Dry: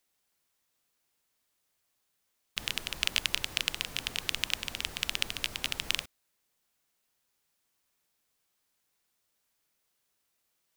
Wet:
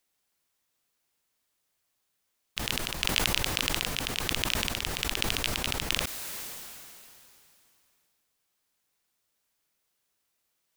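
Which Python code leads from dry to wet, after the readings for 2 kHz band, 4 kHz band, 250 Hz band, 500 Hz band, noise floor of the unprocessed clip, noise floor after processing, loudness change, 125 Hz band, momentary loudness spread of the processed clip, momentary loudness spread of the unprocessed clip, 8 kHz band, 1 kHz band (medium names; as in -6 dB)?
+2.5 dB, +2.0 dB, +12.5 dB, +11.5 dB, -78 dBFS, -78 dBFS, +3.0 dB, +12.0 dB, 14 LU, 5 LU, +5.0 dB, +9.5 dB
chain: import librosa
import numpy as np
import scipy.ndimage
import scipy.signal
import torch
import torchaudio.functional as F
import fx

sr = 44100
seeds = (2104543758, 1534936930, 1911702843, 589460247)

y = fx.sustainer(x, sr, db_per_s=21.0)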